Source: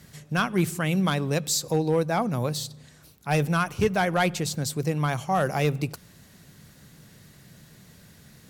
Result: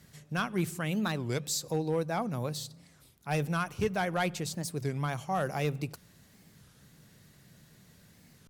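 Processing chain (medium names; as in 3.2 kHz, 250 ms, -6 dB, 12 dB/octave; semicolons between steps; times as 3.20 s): warped record 33 1/3 rpm, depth 250 cents; trim -7 dB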